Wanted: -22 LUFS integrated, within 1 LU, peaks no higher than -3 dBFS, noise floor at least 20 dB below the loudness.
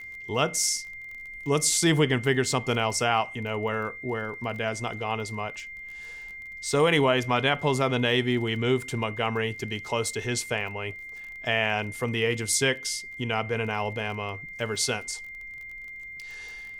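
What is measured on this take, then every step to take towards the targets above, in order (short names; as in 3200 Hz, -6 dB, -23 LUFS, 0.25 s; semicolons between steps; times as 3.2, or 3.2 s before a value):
ticks 26/s; steady tone 2100 Hz; tone level -38 dBFS; loudness -26.5 LUFS; peak -9.0 dBFS; loudness target -22.0 LUFS
-> de-click; notch 2100 Hz, Q 30; gain +4.5 dB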